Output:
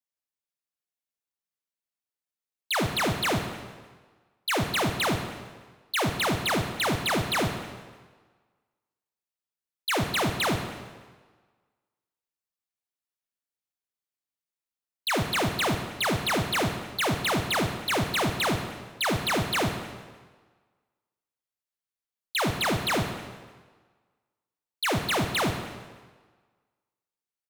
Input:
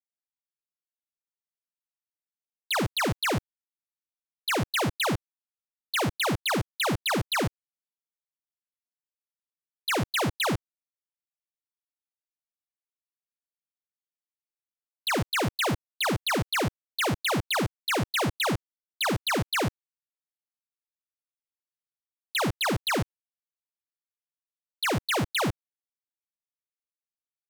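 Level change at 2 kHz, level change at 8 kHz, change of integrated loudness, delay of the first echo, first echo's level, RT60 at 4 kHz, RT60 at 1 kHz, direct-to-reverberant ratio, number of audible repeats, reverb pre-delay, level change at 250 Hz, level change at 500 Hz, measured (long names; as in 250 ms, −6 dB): +1.0 dB, +1.0 dB, +0.5 dB, 151 ms, −17.0 dB, 1.2 s, 1.5 s, 5.5 dB, 2, 21 ms, +1.0 dB, +1.0 dB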